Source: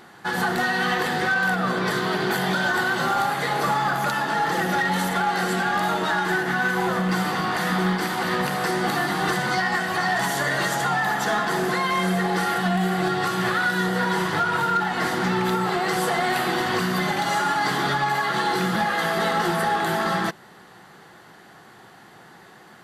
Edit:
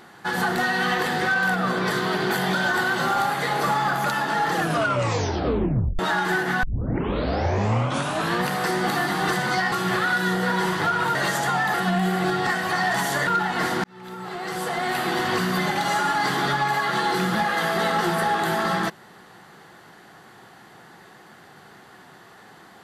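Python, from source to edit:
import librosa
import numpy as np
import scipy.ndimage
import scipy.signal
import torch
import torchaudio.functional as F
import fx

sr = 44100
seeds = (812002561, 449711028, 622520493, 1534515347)

y = fx.edit(x, sr, fx.tape_stop(start_s=4.52, length_s=1.47),
    fx.tape_start(start_s=6.63, length_s=1.81),
    fx.swap(start_s=9.72, length_s=0.8, other_s=13.25, other_length_s=1.43),
    fx.cut(start_s=11.11, length_s=1.41),
    fx.fade_in_span(start_s=15.25, length_s=1.4), tone=tone)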